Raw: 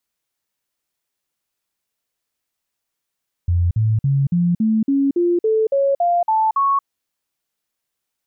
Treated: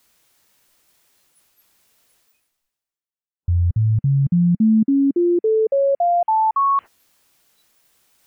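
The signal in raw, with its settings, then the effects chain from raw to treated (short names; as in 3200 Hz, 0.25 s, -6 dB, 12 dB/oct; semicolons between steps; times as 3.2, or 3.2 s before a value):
stepped sine 87.1 Hz up, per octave 3, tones 12, 0.23 s, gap 0.05 s -13.5 dBFS
dynamic EQ 210 Hz, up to +3 dB, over -32 dBFS, Q 2.5; spectral noise reduction 28 dB; reverse; upward compressor, threshold -26 dBFS; reverse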